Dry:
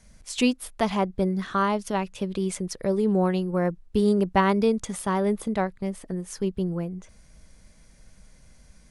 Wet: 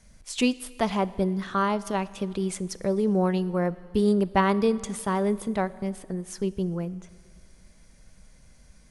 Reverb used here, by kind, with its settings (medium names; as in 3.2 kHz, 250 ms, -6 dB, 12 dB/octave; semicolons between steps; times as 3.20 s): Schroeder reverb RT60 2 s, combs from 27 ms, DRR 17.5 dB; trim -1 dB